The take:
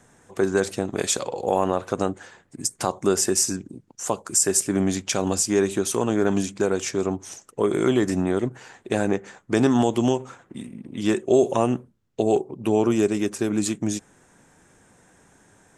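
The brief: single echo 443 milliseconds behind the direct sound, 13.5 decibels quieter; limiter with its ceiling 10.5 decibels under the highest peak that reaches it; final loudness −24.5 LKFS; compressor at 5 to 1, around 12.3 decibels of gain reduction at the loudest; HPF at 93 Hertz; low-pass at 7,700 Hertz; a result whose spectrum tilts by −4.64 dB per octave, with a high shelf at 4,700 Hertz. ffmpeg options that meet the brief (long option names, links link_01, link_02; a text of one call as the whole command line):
ffmpeg -i in.wav -af "highpass=93,lowpass=7700,highshelf=frequency=4700:gain=-8,acompressor=threshold=-29dB:ratio=5,alimiter=level_in=0.5dB:limit=-24dB:level=0:latency=1,volume=-0.5dB,aecho=1:1:443:0.211,volume=11.5dB" out.wav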